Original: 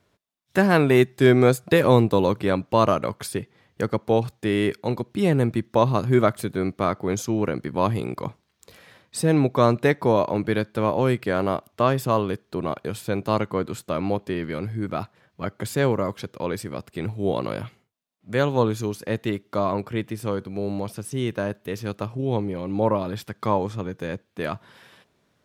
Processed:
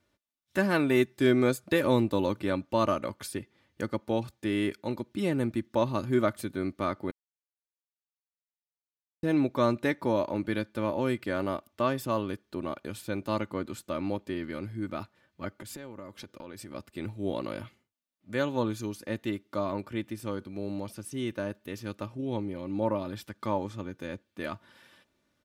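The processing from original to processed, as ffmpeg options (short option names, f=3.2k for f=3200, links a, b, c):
-filter_complex "[0:a]asettb=1/sr,asplit=3[a][b][c];[a]atrim=end=15.594[d];[b]atrim=start=15.59:end=16.75,asetpts=PTS-STARTPTS,afade=t=in:d=0.004:c=qsin,afade=t=out:st=1.156:d=0.004:c=qsin,acompressor=threshold=-31dB:ratio=8:attack=3.2:release=140:knee=1:detection=peak[e];[c]atrim=start=16.746[f];[d][e]acrossfade=d=0.004:c1=hsin:c2=qsin[g];[g][f]acrossfade=d=0.004:c1=qsin:c2=hsin,asplit=3[h][i][j];[h]atrim=end=7.11,asetpts=PTS-STARTPTS,afade=t=out:st=7.106:d=0.004:c=hsin[k];[i]atrim=start=7.11:end=9.23,asetpts=PTS-STARTPTS,volume=0[l];[j]atrim=start=9.23,asetpts=PTS-STARTPTS,afade=t=in:d=0.004:c=hsin[m];[k][l][m]concat=n=3:v=0:a=1,equalizer=f=720:t=o:w=1.1:g=-3.5,aecho=1:1:3.4:0.51,volume=-7dB"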